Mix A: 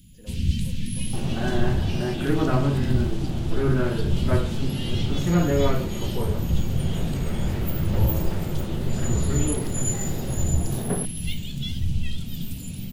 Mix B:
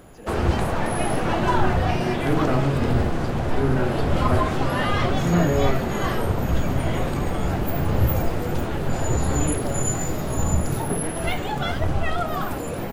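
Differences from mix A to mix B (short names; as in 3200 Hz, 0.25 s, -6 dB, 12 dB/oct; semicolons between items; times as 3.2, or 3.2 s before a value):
speech +7.5 dB; first sound: remove Chebyshev band-stop 210–3000 Hz, order 3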